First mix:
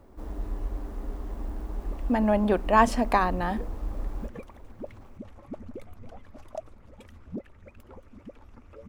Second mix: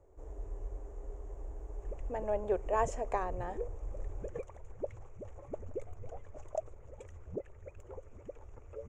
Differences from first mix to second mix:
speech -9.0 dB; master: add FFT filter 130 Hz 0 dB, 230 Hz -18 dB, 420 Hz +5 dB, 1.3 kHz -7 dB, 2.4 kHz -6 dB, 4.6 kHz -18 dB, 6.9 kHz +7 dB, 11 kHz -19 dB

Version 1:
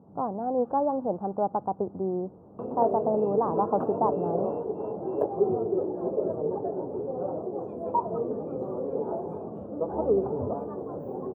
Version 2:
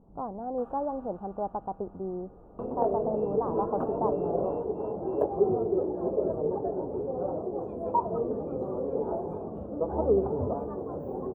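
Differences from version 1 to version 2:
speech -5.5 dB; first sound +9.5 dB; master: remove high-pass 94 Hz 24 dB/octave

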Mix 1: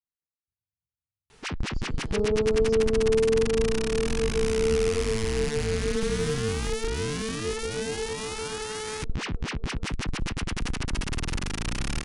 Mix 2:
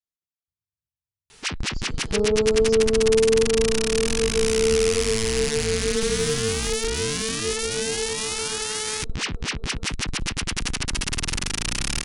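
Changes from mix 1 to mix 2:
second sound +3.5 dB; master: add treble shelf 2.2 kHz +11.5 dB

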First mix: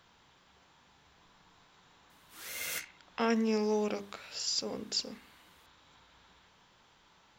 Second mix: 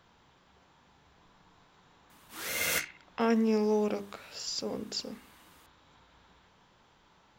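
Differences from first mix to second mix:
background +9.5 dB; master: add tilt shelf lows +3.5 dB, about 1.4 kHz

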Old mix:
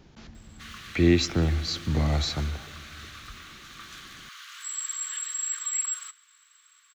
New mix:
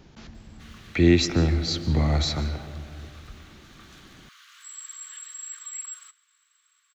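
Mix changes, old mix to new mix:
speech: send +10.0 dB; background -7.5 dB

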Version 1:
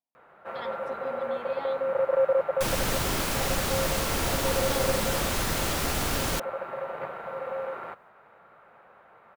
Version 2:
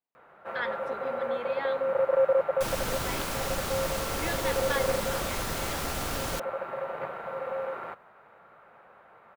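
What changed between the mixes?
speech: remove static phaser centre 410 Hz, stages 6; second sound -5.0 dB

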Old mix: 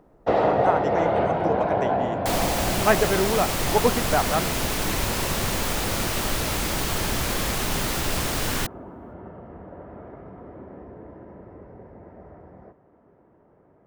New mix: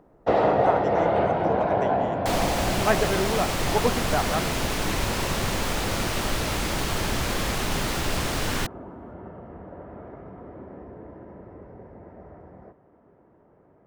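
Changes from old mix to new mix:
speech -3.5 dB; second sound: add treble shelf 9.3 kHz -9.5 dB

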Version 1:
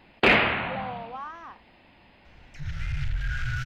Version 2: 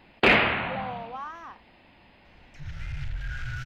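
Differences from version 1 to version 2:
speech: remove distance through air 63 m; second sound -4.5 dB

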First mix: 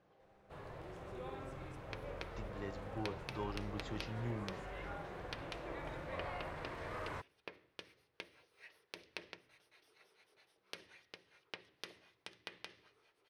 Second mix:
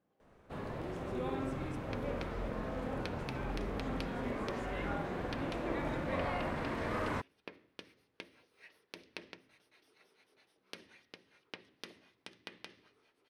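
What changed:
speech -11.0 dB; first sound +7.0 dB; master: add peaking EQ 240 Hz +12 dB 0.64 oct

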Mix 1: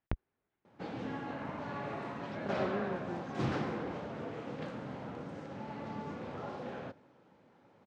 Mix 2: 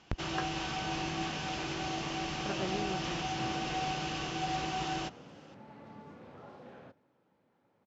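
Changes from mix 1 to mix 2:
speech: remove low-pass 2.8 kHz; first sound: unmuted; second sound -9.0 dB

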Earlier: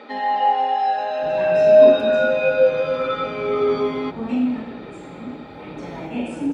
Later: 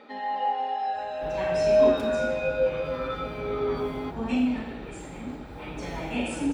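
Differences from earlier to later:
first sound -9.0 dB; second sound: add tilt EQ +2.5 dB/octave; master: remove high-pass 180 Hz 12 dB/octave

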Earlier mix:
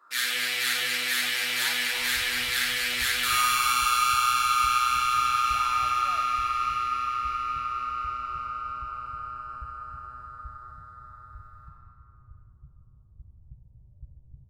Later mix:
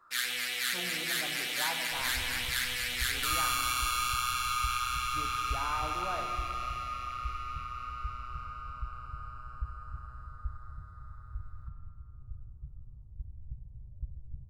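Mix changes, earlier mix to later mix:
speech: remove band-pass filter 3.3 kHz, Q 0.5; first sound: send -11.0 dB; master: add bass shelf 63 Hz +11.5 dB

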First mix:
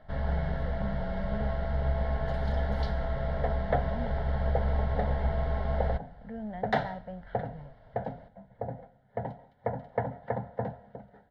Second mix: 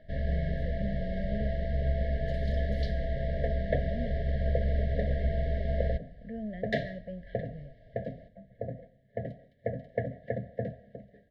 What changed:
speech: send +7.5 dB; master: add brick-wall FIR band-stop 700–1600 Hz

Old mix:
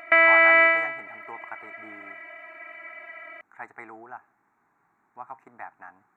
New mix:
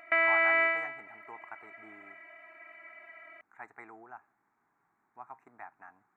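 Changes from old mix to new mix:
speech -7.0 dB; background -9.0 dB

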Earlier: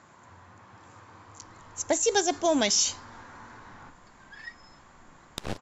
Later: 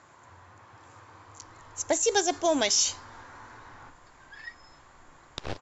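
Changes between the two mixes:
background: add low-pass 6.1 kHz 24 dB/octave; master: add peaking EQ 200 Hz -11 dB 0.51 oct

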